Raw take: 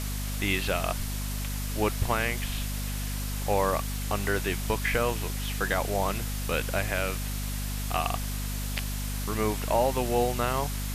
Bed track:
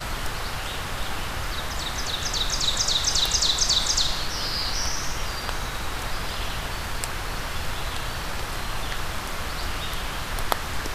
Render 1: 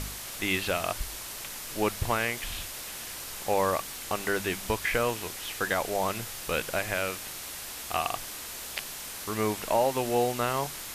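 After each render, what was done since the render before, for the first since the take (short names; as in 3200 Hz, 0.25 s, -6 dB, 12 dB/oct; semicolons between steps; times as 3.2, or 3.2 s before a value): de-hum 50 Hz, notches 5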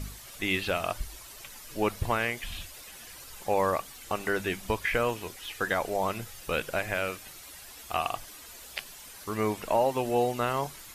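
denoiser 11 dB, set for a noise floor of -40 dBFS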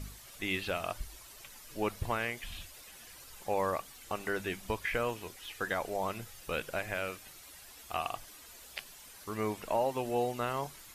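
gain -5.5 dB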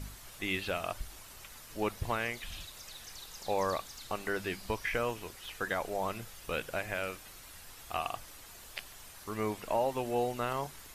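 add bed track -27.5 dB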